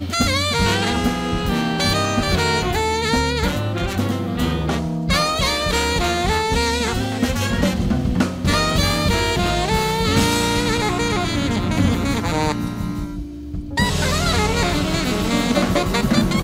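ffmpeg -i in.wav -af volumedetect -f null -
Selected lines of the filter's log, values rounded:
mean_volume: -19.3 dB
max_volume: -3.2 dB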